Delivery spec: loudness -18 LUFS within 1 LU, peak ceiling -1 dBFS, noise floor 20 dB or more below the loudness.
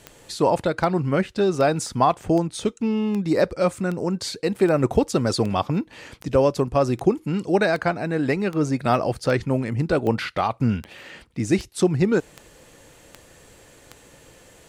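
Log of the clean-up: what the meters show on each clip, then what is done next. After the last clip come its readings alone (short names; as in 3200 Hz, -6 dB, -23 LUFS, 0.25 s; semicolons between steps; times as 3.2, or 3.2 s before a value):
clicks 20; loudness -22.5 LUFS; peak -6.0 dBFS; loudness target -18.0 LUFS
-> de-click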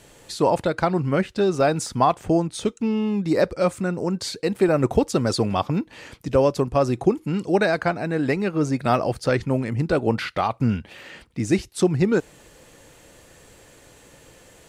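clicks 1; loudness -22.5 LUFS; peak -6.0 dBFS; loudness target -18.0 LUFS
-> gain +4.5 dB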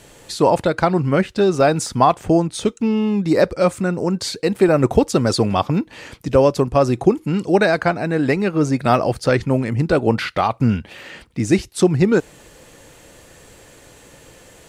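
loudness -18.0 LUFS; peak -1.5 dBFS; noise floor -47 dBFS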